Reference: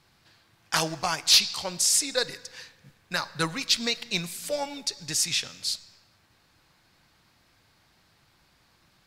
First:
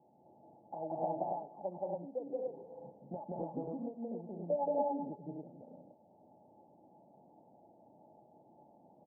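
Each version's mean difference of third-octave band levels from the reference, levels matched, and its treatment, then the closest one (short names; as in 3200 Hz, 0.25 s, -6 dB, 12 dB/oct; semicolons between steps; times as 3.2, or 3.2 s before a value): 21.0 dB: HPF 310 Hz 12 dB/oct; compressor 6:1, threshold -38 dBFS, peak gain reduction 21.5 dB; rippled Chebyshev low-pass 880 Hz, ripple 6 dB; loudspeakers at several distances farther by 60 m 0 dB, 72 m -10 dB, 84 m -5 dB, 96 m -1 dB; gain +8.5 dB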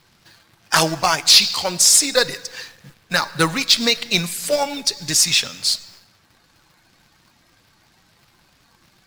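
2.0 dB: bin magnitudes rounded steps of 15 dB; bell 65 Hz -4 dB 1.5 oct; in parallel at -6 dB: companded quantiser 4-bit; on the sum: maximiser +8 dB; gain -1 dB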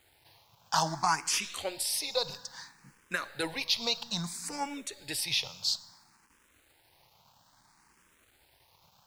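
5.0 dB: limiter -15.5 dBFS, peak gain reduction 5.5 dB; bit-crush 10-bit; bell 910 Hz +8.5 dB 0.56 oct; endless phaser +0.6 Hz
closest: second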